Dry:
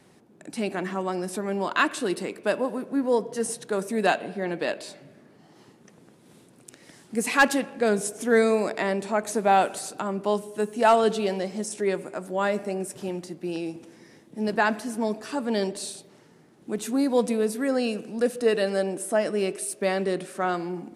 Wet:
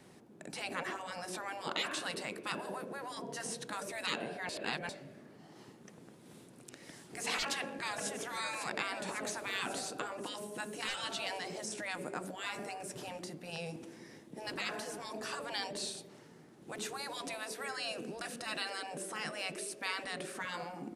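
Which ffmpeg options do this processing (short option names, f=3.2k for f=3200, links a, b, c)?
-filter_complex "[0:a]asplit=2[a][b];[b]afade=t=in:st=7.43:d=0.01,afade=t=out:st=8.08:d=0.01,aecho=0:1:550|1100|1650|2200|2750|3300|3850|4400:0.266073|0.172947|0.112416|0.0730702|0.0474956|0.0308721|0.0200669|0.0130435[c];[a][c]amix=inputs=2:normalize=0,asplit=3[d][e][f];[d]atrim=end=4.492[g];[e]atrim=start=4.488:end=4.892,asetpts=PTS-STARTPTS,areverse[h];[f]atrim=start=4.888[i];[g][h]acrossfade=d=0.004:c1=hsin:c2=hsin[j];[j][i]acrossfade=d=0.004:c1=hsin:c2=hsin,acrossover=split=6400[k][l];[l]acompressor=threshold=-46dB:ratio=4:attack=1:release=60[m];[k][m]amix=inputs=2:normalize=0,afftfilt=real='re*lt(hypot(re,im),0.112)':imag='im*lt(hypot(re,im),0.112)':win_size=1024:overlap=0.75,volume=-1.5dB"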